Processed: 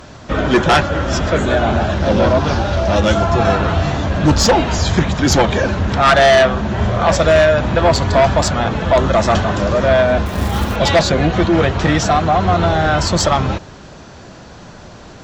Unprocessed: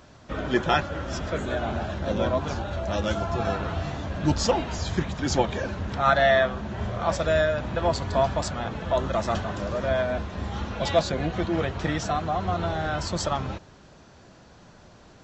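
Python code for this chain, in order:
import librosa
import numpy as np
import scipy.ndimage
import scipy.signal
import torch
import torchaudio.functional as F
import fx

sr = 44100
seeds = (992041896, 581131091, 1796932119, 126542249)

p1 = fx.delta_mod(x, sr, bps=32000, step_db=-39.0, at=(2.0, 2.96))
p2 = fx.fold_sine(p1, sr, drive_db=11, ceiling_db=-7.0)
p3 = p1 + F.gain(torch.from_numpy(p2), -7.5).numpy()
p4 = fx.quant_float(p3, sr, bits=2, at=(10.26, 10.76))
y = F.gain(torch.from_numpy(p4), 3.5).numpy()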